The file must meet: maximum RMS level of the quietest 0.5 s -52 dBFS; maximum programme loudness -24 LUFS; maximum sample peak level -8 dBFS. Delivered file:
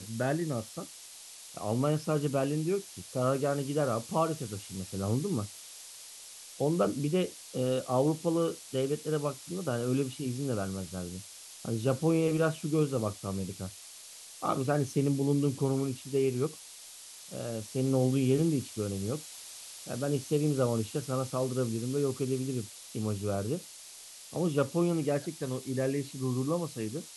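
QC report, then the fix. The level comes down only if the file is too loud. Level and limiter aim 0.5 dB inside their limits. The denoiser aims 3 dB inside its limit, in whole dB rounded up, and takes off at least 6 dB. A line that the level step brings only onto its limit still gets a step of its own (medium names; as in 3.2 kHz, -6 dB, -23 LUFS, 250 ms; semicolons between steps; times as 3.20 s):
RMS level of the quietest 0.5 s -49 dBFS: fail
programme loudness -31.5 LUFS: pass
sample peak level -14.5 dBFS: pass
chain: noise reduction 6 dB, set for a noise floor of -49 dBFS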